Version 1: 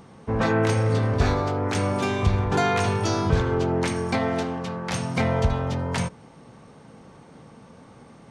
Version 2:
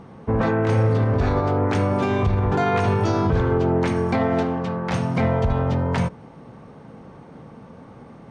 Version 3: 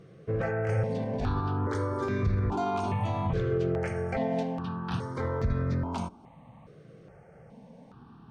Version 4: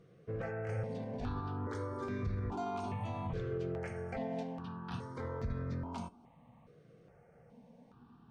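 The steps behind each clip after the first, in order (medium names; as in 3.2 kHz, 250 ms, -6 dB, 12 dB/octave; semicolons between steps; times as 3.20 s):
low-pass 1.5 kHz 6 dB/octave; peak limiter -17 dBFS, peak gain reduction 8 dB; trim +5.5 dB
stepped phaser 2.4 Hz 240–3000 Hz; trim -6 dB
feedback comb 240 Hz, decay 0.18 s, harmonics all, mix 60%; trim -3 dB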